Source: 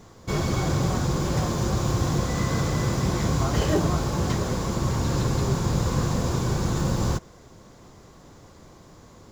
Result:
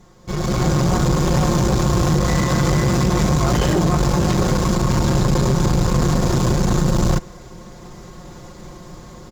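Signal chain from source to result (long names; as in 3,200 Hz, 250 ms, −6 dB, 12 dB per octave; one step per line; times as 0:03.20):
low-shelf EQ 99 Hz +7 dB
comb filter 5.6 ms, depth 64%
brickwall limiter −14.5 dBFS, peak gain reduction 6.5 dB
automatic gain control gain up to 11.5 dB
tube saturation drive 11 dB, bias 0.65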